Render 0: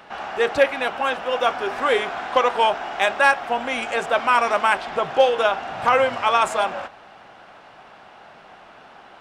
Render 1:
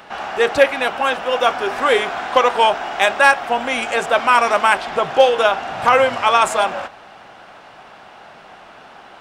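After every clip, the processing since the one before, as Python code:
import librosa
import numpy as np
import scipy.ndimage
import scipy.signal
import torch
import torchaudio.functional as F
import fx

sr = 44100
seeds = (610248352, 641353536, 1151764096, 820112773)

y = fx.high_shelf(x, sr, hz=5800.0, db=5.0)
y = y * librosa.db_to_amplitude(4.0)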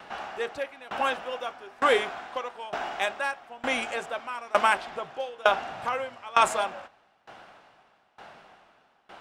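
y = fx.tremolo_decay(x, sr, direction='decaying', hz=1.1, depth_db=24)
y = y * librosa.db_to_amplitude(-4.0)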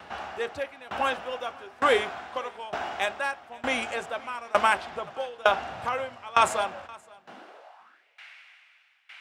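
y = fx.filter_sweep_highpass(x, sr, from_hz=75.0, to_hz=2200.0, start_s=7.01, end_s=8.05, q=4.1)
y = y + 10.0 ** (-24.0 / 20.0) * np.pad(y, (int(524 * sr / 1000.0), 0))[:len(y)]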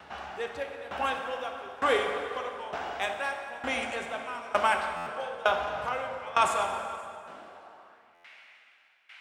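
y = fx.rev_plate(x, sr, seeds[0], rt60_s=2.6, hf_ratio=0.65, predelay_ms=0, drr_db=3.5)
y = fx.buffer_glitch(y, sr, at_s=(4.96, 8.14), block=512, repeats=8)
y = y * librosa.db_to_amplitude(-4.0)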